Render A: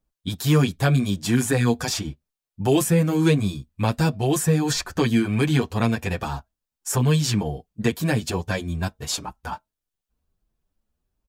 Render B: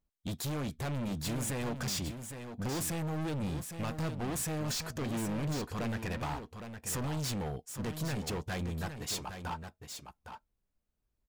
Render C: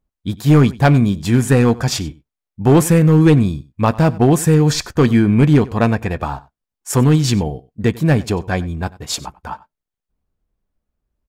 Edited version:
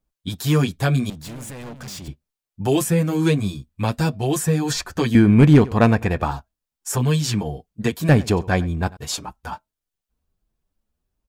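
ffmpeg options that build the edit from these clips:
-filter_complex "[2:a]asplit=2[a][b];[0:a]asplit=4[c][d][e][f];[c]atrim=end=1.102[g];[1:a]atrim=start=1.098:end=2.082[h];[d]atrim=start=2.078:end=5.152[i];[a]atrim=start=5.148:end=6.312[j];[e]atrim=start=6.308:end=8.092[k];[b]atrim=start=8.088:end=8.972[l];[f]atrim=start=8.968[m];[g][h]acrossfade=d=0.004:c1=hsin:c2=hsin[n];[n][i]acrossfade=d=0.004:c1=hsin:c2=hsin[o];[o][j]acrossfade=d=0.004:c1=hsin:c2=hsin[p];[p][k]acrossfade=d=0.004:c1=hsin:c2=hsin[q];[q][l]acrossfade=d=0.004:c1=hsin:c2=hsin[r];[r][m]acrossfade=d=0.004:c1=hsin:c2=hsin"

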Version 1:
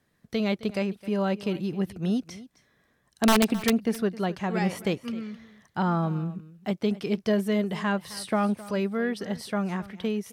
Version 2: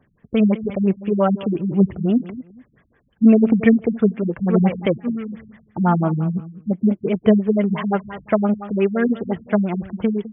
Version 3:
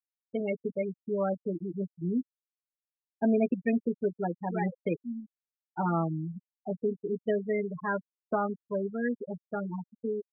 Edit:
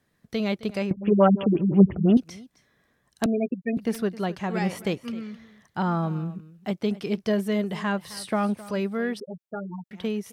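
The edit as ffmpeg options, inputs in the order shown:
-filter_complex "[2:a]asplit=2[a][b];[0:a]asplit=4[c][d][e][f];[c]atrim=end=0.912[g];[1:a]atrim=start=0.908:end=2.172[h];[d]atrim=start=2.168:end=3.262[i];[a]atrim=start=3.258:end=3.772[j];[e]atrim=start=3.768:end=9.202[k];[b]atrim=start=9.198:end=9.912[l];[f]atrim=start=9.908[m];[g][h]acrossfade=d=0.004:c1=hsin:c2=hsin[n];[n][i]acrossfade=d=0.004:c1=hsin:c2=hsin[o];[o][j]acrossfade=d=0.004:c1=hsin:c2=hsin[p];[p][k]acrossfade=d=0.004:c1=hsin:c2=hsin[q];[q][l]acrossfade=d=0.004:c1=hsin:c2=hsin[r];[r][m]acrossfade=d=0.004:c1=hsin:c2=hsin"

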